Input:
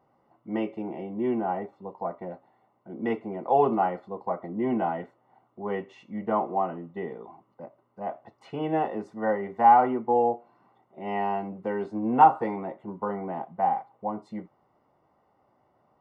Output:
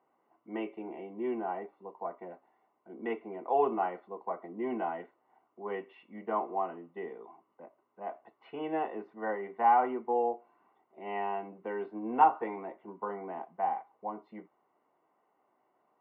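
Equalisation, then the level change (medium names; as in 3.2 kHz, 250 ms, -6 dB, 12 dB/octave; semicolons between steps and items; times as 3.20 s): cabinet simulation 430–2700 Hz, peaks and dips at 560 Hz -9 dB, 830 Hz -6 dB, 1.3 kHz -6 dB, 1.9 kHz -4 dB; 0.0 dB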